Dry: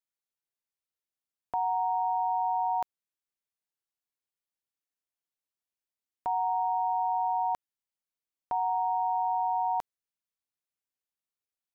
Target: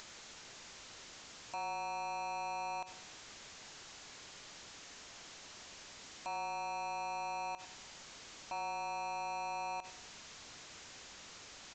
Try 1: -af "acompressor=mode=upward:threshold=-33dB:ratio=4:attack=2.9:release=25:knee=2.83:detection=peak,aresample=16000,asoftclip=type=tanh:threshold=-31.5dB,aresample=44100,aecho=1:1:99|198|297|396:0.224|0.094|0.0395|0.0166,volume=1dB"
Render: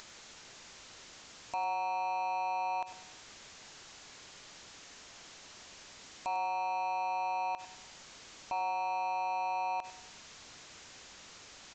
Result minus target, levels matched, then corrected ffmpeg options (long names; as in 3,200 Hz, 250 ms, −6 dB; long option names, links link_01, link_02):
soft clipping: distortion −5 dB
-af "acompressor=mode=upward:threshold=-33dB:ratio=4:attack=2.9:release=25:knee=2.83:detection=peak,aresample=16000,asoftclip=type=tanh:threshold=-39dB,aresample=44100,aecho=1:1:99|198|297|396:0.224|0.094|0.0395|0.0166,volume=1dB"